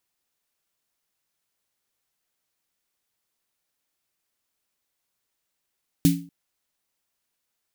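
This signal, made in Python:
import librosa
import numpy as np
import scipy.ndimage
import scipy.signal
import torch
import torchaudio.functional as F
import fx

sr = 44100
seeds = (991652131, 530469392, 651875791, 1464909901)

y = fx.drum_snare(sr, seeds[0], length_s=0.24, hz=170.0, second_hz=280.0, noise_db=-10, noise_from_hz=2100.0, decay_s=0.4, noise_decay_s=0.28)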